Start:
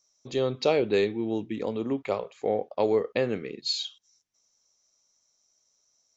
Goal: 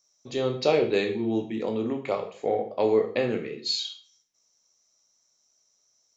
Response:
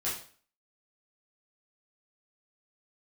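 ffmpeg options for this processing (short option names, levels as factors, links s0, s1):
-filter_complex "[0:a]asplit=2[s0][s1];[s1]highpass=f=91:w=0.5412,highpass=f=91:w=1.3066[s2];[1:a]atrim=start_sample=2205[s3];[s2][s3]afir=irnorm=-1:irlink=0,volume=0.531[s4];[s0][s4]amix=inputs=2:normalize=0,volume=0.75"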